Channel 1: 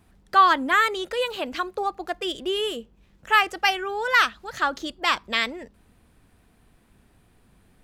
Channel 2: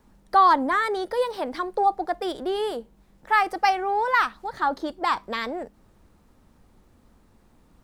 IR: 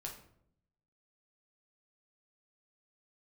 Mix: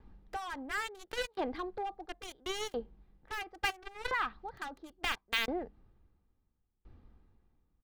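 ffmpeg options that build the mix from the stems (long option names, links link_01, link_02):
-filter_complex "[0:a]lowshelf=frequency=80:gain=-11.5,acompressor=threshold=-34dB:ratio=1.5,acrusher=bits=3:mix=0:aa=0.5,volume=-1dB[link_01];[1:a]alimiter=limit=-17dB:level=0:latency=1:release=34,lowpass=frequency=4600:width=0.5412,lowpass=frequency=4600:width=1.3066,aeval=exprs='val(0)*pow(10,-33*if(lt(mod(0.73*n/s,1),2*abs(0.73)/1000),1-mod(0.73*n/s,1)/(2*abs(0.73)/1000),(mod(0.73*n/s,1)-2*abs(0.73)/1000)/(1-2*abs(0.73)/1000))/20)':channel_layout=same,volume=-1,volume=-4.5dB,asplit=2[link_02][link_03];[link_03]apad=whole_len=345324[link_04];[link_01][link_04]sidechaincompress=threshold=-54dB:ratio=6:attack=20:release=349[link_05];[link_05][link_02]amix=inputs=2:normalize=0,bass=frequency=250:gain=8,treble=frequency=4000:gain=-5,aecho=1:1:2.5:0.33"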